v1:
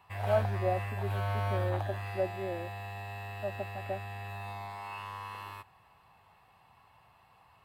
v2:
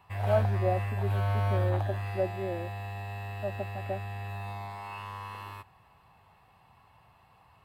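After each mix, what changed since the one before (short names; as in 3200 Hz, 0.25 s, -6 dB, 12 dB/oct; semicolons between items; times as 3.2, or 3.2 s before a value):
master: add low shelf 390 Hz +5.5 dB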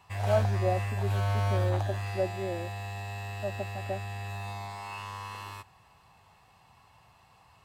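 background: add bell 6400 Hz +13 dB 1.2 oct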